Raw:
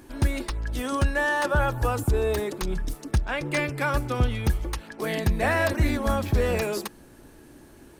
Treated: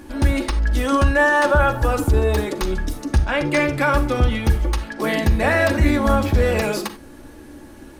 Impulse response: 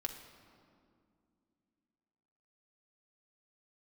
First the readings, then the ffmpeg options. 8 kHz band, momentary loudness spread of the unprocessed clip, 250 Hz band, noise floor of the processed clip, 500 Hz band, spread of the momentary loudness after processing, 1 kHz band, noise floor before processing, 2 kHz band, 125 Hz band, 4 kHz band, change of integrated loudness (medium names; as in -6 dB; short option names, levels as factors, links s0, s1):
+4.0 dB, 8 LU, +8.0 dB, -42 dBFS, +7.0 dB, 9 LU, +7.5 dB, -50 dBFS, +7.0 dB, +6.0 dB, +6.0 dB, +7.0 dB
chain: -filter_complex "[0:a]highshelf=f=8900:g=-5.5,asplit=2[s0][s1];[s1]alimiter=limit=0.1:level=0:latency=1,volume=1.19[s2];[s0][s2]amix=inputs=2:normalize=0[s3];[1:a]atrim=start_sample=2205,atrim=end_sample=4410[s4];[s3][s4]afir=irnorm=-1:irlink=0,volume=1.26"